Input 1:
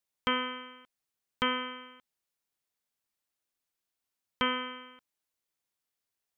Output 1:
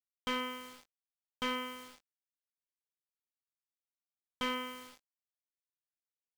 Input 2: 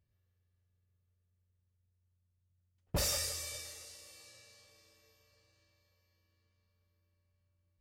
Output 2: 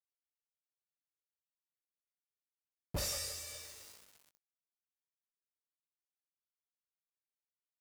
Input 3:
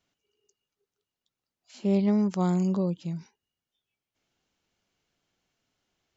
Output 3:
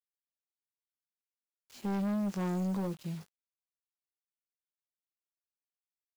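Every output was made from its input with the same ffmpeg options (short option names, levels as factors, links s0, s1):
-filter_complex "[0:a]acrusher=bits=7:mix=0:aa=0.000001,asplit=2[s0][s1];[s1]adelay=20,volume=0.316[s2];[s0][s2]amix=inputs=2:normalize=0,volume=18.8,asoftclip=hard,volume=0.0531,volume=0.596"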